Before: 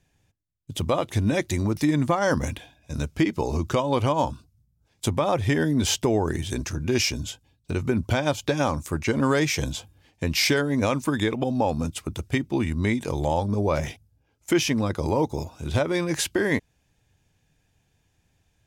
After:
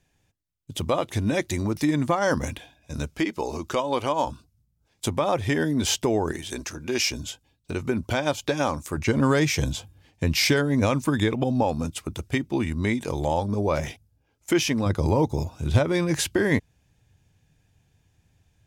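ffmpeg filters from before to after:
-af "asetnsamples=n=441:p=0,asendcmd='3.14 equalizer g -13.5;4.27 equalizer g -4;6.32 equalizer g -14;7.11 equalizer g -5.5;8.97 equalizer g 4;11.63 equalizer g -2;14.86 equalizer g 6',equalizer=f=100:t=o:w=2:g=-3"

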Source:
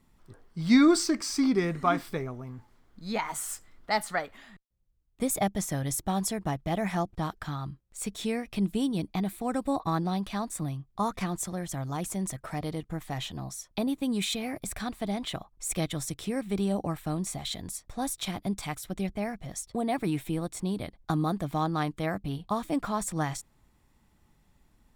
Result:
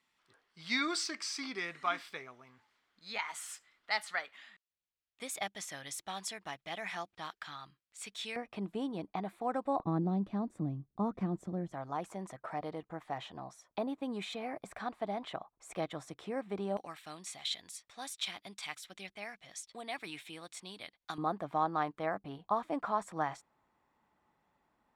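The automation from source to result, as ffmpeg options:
-af "asetnsamples=n=441:p=0,asendcmd='8.36 bandpass f 860;9.8 bandpass f 280;11.73 bandpass f 860;16.77 bandpass f 3000;21.18 bandpass f 920',bandpass=f=2.8k:t=q:w=0.94:csg=0"

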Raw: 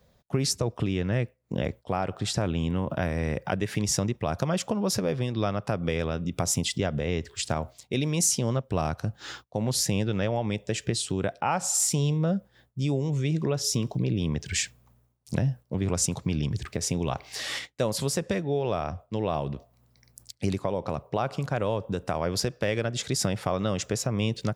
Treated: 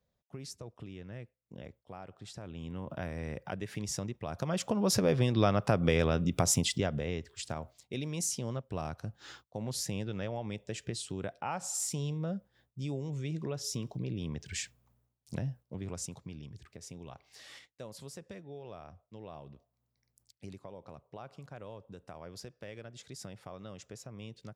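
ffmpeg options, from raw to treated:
-af "volume=1dB,afade=t=in:st=2.42:d=0.55:silence=0.398107,afade=t=in:st=4.31:d=0.87:silence=0.266073,afade=t=out:st=6.19:d=1.08:silence=0.281838,afade=t=out:st=15.46:d=0.96:silence=0.354813"

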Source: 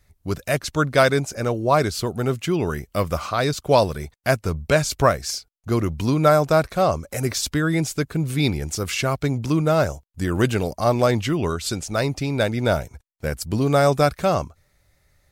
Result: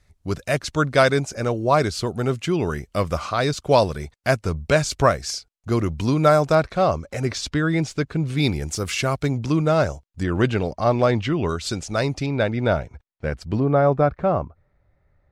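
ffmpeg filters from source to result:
-af "asetnsamples=n=441:p=0,asendcmd='6.55 lowpass f 5000;8.37 lowpass f 11000;9.29 lowpass f 6500;10.23 lowpass f 3900;11.49 lowpass f 7100;12.26 lowpass f 3100;13.6 lowpass f 1300',lowpass=8.6k"

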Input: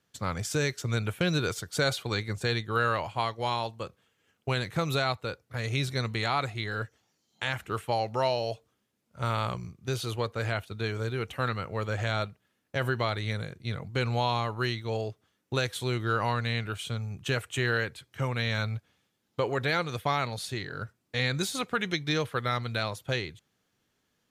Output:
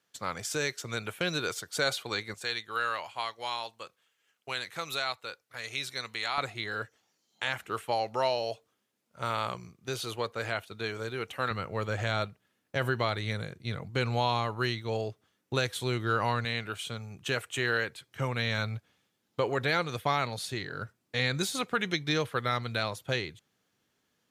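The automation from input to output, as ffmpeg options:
-af "asetnsamples=n=441:p=0,asendcmd='2.34 highpass f 1400;6.38 highpass f 330;11.51 highpass f 91;16.45 highpass f 260;18.08 highpass f 110',highpass=f=460:p=1"

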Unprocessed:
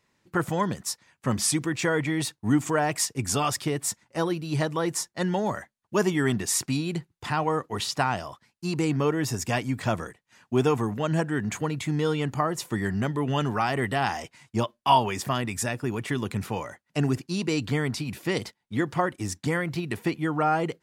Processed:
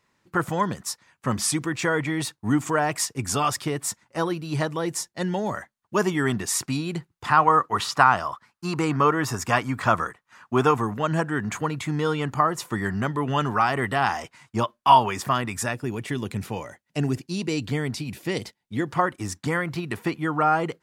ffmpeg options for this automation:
-af "asetnsamples=n=441:p=0,asendcmd='4.74 equalizer g -2;5.52 equalizer g 5;7.29 equalizer g 14.5;10.71 equalizer g 7.5;15.74 equalizer g -3.5;18.91 equalizer g 6',equalizer=f=1.2k:t=o:w=1:g=4.5"

